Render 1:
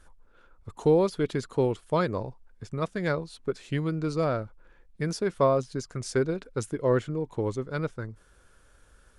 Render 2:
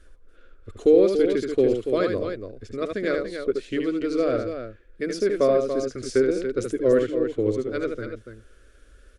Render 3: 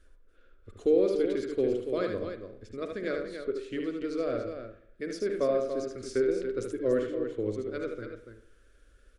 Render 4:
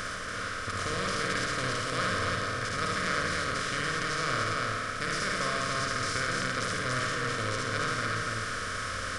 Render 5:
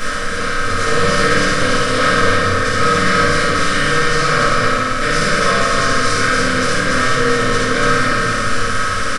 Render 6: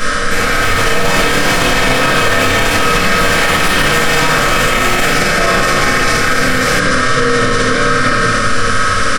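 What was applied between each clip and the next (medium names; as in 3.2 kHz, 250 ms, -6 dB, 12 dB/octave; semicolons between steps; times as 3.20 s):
treble shelf 5.4 kHz -11 dB; static phaser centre 370 Hz, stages 4; on a send: loudspeakers at several distances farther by 26 m -5 dB, 98 m -8 dB; on the sum: trim +6 dB
reverberation RT60 0.65 s, pre-delay 43 ms, DRR 9 dB; trim -8 dB
spectral levelling over time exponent 0.2; FFT filter 170 Hz 0 dB, 370 Hz -26 dB, 1.2 kHz +3 dB; on a send: flutter echo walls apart 9.4 m, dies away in 0.62 s
comb 3.8 ms, depth 32%; simulated room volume 87 m³, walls mixed, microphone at 1.7 m; trim +6.5 dB
ever faster or slower copies 309 ms, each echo +6 st, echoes 2; peak limiter -8 dBFS, peak gain reduction 9.5 dB; trim +5.5 dB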